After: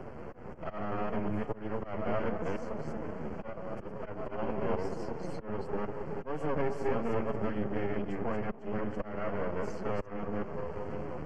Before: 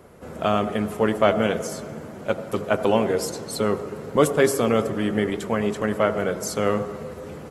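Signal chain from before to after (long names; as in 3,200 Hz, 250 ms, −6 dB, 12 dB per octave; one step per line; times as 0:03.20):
delay that plays each chunk backwards 122 ms, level −1 dB
volume swells 306 ms
phase-vocoder stretch with locked phases 1.5×
half-wave rectification
Butterworth band-reject 3,700 Hz, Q 3
head-to-tape spacing loss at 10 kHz 30 dB
multiband upward and downward compressor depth 70%
level −5 dB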